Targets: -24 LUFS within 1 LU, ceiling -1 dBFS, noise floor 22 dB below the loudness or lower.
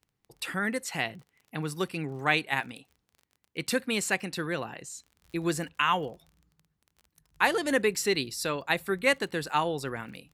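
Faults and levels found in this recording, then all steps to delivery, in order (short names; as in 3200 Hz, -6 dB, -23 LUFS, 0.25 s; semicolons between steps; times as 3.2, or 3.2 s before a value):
ticks 29/s; loudness -29.5 LUFS; peak -8.0 dBFS; loudness target -24.0 LUFS
-> de-click; gain +5.5 dB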